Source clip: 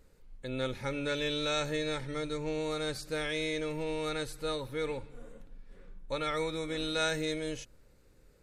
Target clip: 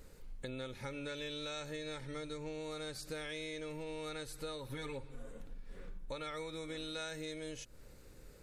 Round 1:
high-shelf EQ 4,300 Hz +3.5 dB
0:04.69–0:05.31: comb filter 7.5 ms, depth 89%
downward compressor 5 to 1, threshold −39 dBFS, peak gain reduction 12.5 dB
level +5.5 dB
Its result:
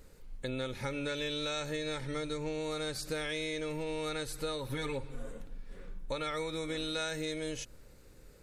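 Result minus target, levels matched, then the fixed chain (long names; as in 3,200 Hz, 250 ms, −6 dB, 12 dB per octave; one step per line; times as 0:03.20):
downward compressor: peak gain reduction −7 dB
high-shelf EQ 4,300 Hz +3.5 dB
0:04.69–0:05.31: comb filter 7.5 ms, depth 89%
downward compressor 5 to 1, threshold −47.5 dBFS, peak gain reduction 19.5 dB
level +5.5 dB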